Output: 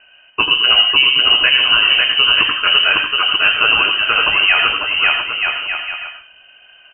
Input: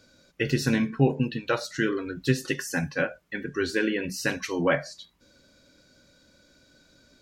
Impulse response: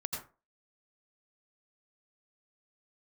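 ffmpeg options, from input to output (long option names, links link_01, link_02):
-filter_complex "[0:a]aeval=exprs='if(lt(val(0),0),0.708*val(0),val(0))':channel_layout=same,aecho=1:1:570|969|1248|1444|1581:0.631|0.398|0.251|0.158|0.1,asplit=2[link_01][link_02];[1:a]atrim=start_sample=2205[link_03];[link_02][link_03]afir=irnorm=-1:irlink=0,volume=-1dB[link_04];[link_01][link_04]amix=inputs=2:normalize=0,asetrate=45864,aresample=44100,lowpass=frequency=2600:width_type=q:width=0.5098,lowpass=frequency=2600:width_type=q:width=0.6013,lowpass=frequency=2600:width_type=q:width=0.9,lowpass=frequency=2600:width_type=q:width=2.563,afreqshift=-3100,lowshelf=frequency=140:gain=9,alimiter=level_in=9.5dB:limit=-1dB:release=50:level=0:latency=1,volume=-1dB"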